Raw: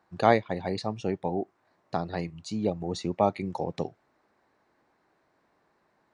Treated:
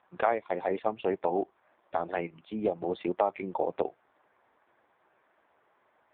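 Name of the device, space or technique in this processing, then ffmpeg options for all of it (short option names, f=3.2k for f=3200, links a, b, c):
voicemail: -af "highpass=400,lowpass=3.3k,acompressor=threshold=-28dB:ratio=8,volume=7dB" -ar 8000 -c:a libopencore_amrnb -b:a 5150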